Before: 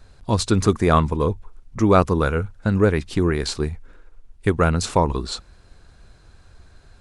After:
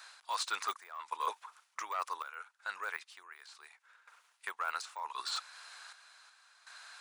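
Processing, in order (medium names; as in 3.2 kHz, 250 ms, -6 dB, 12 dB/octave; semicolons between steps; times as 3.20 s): de-esser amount 95%; high-pass 1 kHz 24 dB/octave; reverse; compression 8:1, threshold -41 dBFS, peak gain reduction 19 dB; reverse; random-step tremolo 2.7 Hz, depth 90%; trim +9.5 dB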